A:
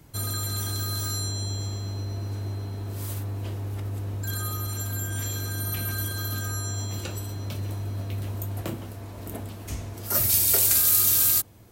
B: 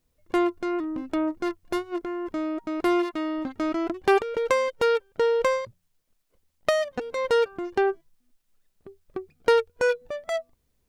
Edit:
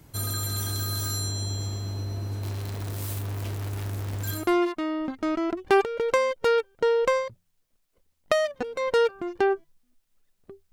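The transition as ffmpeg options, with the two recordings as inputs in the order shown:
-filter_complex "[0:a]asettb=1/sr,asplit=3[a][b][c];[a]atrim=end=2.434[d];[b]atrim=start=2.43:end=4.48,asetpts=PTS-STARTPTS,afade=t=in:d=0.004:c=qsin,afade=t=out:st=2.046:d=0.004:c=qsin,acrusher=bits=7:dc=4:mix=0:aa=0.000001[e];[c]atrim=start=4.476[f];[d][e]acrossfade=d=0.004:c1=hsin:c2=qsin[g];[g][f]acrossfade=d=0.004:c1=qsin:c2=hsin,apad=whole_dur=10.72,atrim=end=10.72,atrim=end=4.48,asetpts=PTS-STARTPTS[h];[1:a]atrim=start=2.67:end=9.09,asetpts=PTS-STARTPTS[i];[h][i]acrossfade=d=0.18:c1=tri:c2=tri"

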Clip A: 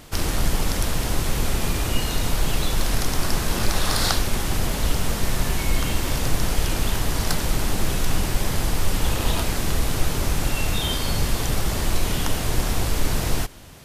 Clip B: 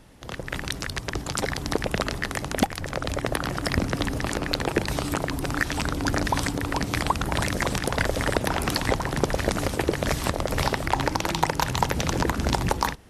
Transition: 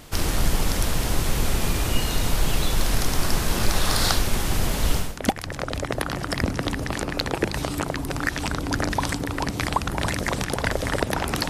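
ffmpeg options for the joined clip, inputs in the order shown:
-filter_complex "[0:a]apad=whole_dur=11.49,atrim=end=11.49,atrim=end=5.27,asetpts=PTS-STARTPTS[a];[1:a]atrim=start=2.31:end=8.83,asetpts=PTS-STARTPTS[b];[a][b]acrossfade=d=0.3:c1=qua:c2=qua"

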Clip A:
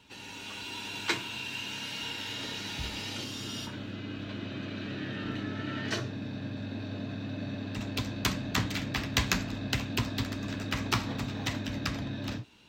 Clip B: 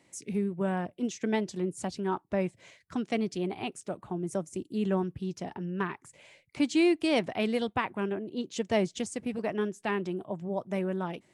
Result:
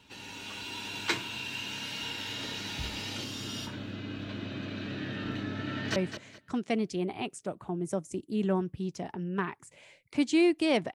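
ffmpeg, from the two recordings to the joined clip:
-filter_complex "[0:a]apad=whole_dur=10.94,atrim=end=10.94,atrim=end=5.962[a];[1:a]atrim=start=2.378:end=7.36[b];[a][b]acrossfade=d=0.004:c1=hsin:c2=hsin,asplit=2[c][d];[d]afade=t=in:st=5.68:d=0.01,afade=t=out:st=5.96:d=0.01,aecho=0:1:210|420|630:0.354813|0.0887033|0.0221758[e];[c][e]amix=inputs=2:normalize=0"

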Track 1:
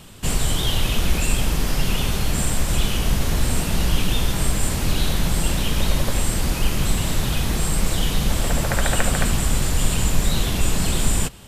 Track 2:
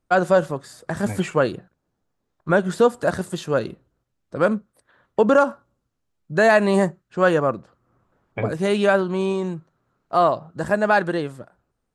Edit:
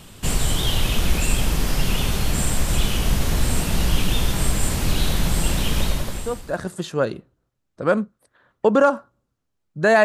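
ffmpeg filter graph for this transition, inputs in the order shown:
-filter_complex "[0:a]apad=whole_dur=10.04,atrim=end=10.04,atrim=end=6.78,asetpts=PTS-STARTPTS[a];[1:a]atrim=start=2.32:end=6.58,asetpts=PTS-STARTPTS[b];[a][b]acrossfade=d=1:c1=qua:c2=qua"

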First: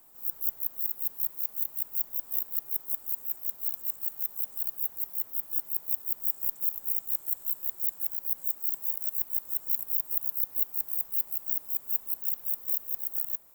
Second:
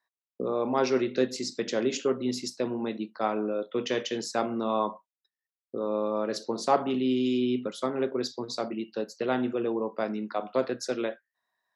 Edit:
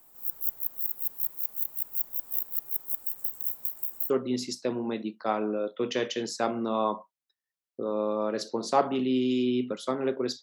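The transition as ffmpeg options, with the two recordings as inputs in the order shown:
-filter_complex "[0:a]apad=whole_dur=10.42,atrim=end=10.42,asplit=2[a][b];[a]atrim=end=3.052[c];[b]atrim=start=3.048:end=4.102,asetpts=PTS-STARTPTS,areverse[d];[1:a]atrim=start=2.048:end=8.37[e];[c][d]acrossfade=d=0.004:c1=hsin:c2=hsin[f];[f][e]acrossfade=d=0.004:c1=hsin:c2=hsin"

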